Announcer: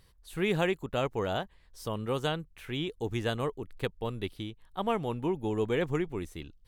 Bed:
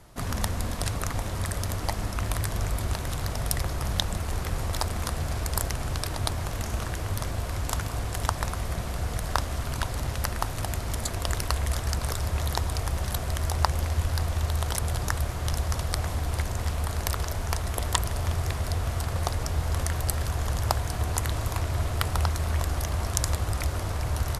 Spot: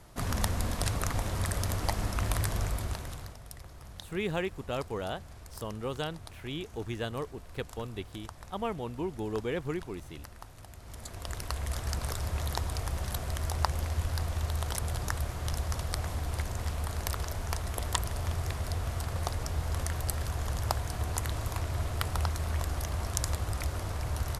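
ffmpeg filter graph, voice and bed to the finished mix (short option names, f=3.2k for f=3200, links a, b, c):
-filter_complex "[0:a]adelay=3750,volume=-4dB[a];[1:a]volume=12.5dB,afade=t=out:st=2.46:d=0.93:silence=0.133352,afade=t=in:st=10.76:d=1.18:silence=0.199526[b];[a][b]amix=inputs=2:normalize=0"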